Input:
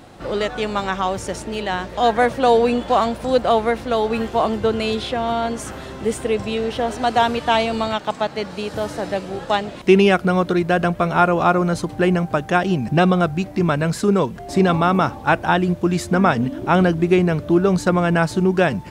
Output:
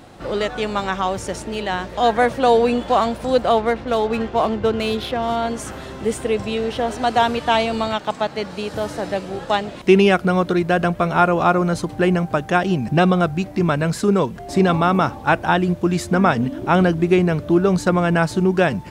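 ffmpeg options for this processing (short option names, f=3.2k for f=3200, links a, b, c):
-filter_complex "[0:a]asettb=1/sr,asplit=3[a][b][c];[a]atrim=end=3.574[d];[b]atrim=start=3.57:end=5.36,asetpts=PTS-STARTPTS,afade=t=in:d=0.004:c=qsin,afade=t=out:st=1.786:d=0.004:c=qsin,adynamicsmooth=sensitivity=4.5:basefreq=2.9k[e];[c]atrim=start=5.356[f];[d][e]acrossfade=d=0.004:c1=hsin:c2=qsin[g];[g][f]acrossfade=d=0.004:c1=qsin:c2=hsin"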